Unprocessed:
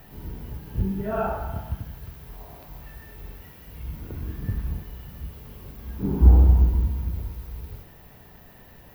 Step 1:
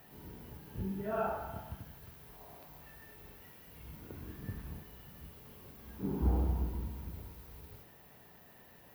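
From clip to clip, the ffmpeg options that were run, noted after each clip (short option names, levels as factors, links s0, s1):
-af "highpass=f=200:p=1,equalizer=f=8800:t=o:w=0.48:g=4,volume=0.447"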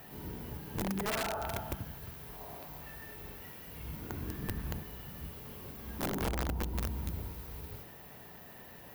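-af "acompressor=threshold=0.0141:ratio=16,aeval=exprs='(mod(56.2*val(0)+1,2)-1)/56.2':c=same,volume=2.24"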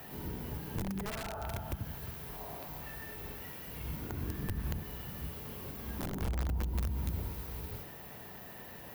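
-filter_complex "[0:a]acrossover=split=160[s0][s1];[s1]acompressor=threshold=0.00794:ratio=5[s2];[s0][s2]amix=inputs=2:normalize=0,volume=1.41"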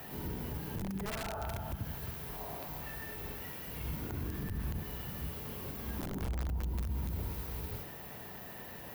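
-af "alimiter=level_in=2:limit=0.0631:level=0:latency=1:release=33,volume=0.501,volume=1.19"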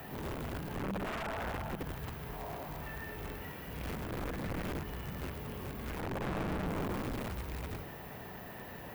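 -filter_complex "[0:a]aeval=exprs='(mod(44.7*val(0)+1,2)-1)/44.7':c=same,acrossover=split=2900[s0][s1];[s1]acompressor=threshold=0.00224:ratio=4:attack=1:release=60[s2];[s0][s2]amix=inputs=2:normalize=0,volume=1.33"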